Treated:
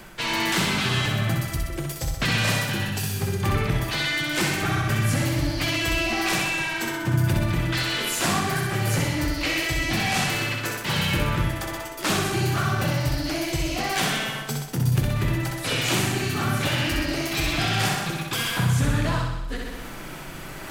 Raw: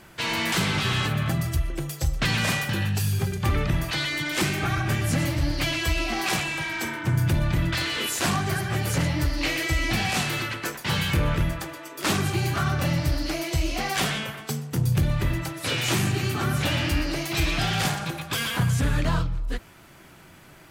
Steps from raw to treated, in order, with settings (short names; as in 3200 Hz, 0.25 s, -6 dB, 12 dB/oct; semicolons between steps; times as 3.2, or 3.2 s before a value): added noise brown -53 dBFS; flutter echo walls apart 10.9 m, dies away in 0.88 s; reverse; upward compressor, threshold -25 dBFS; reverse; bell 72 Hz -10.5 dB 0.58 oct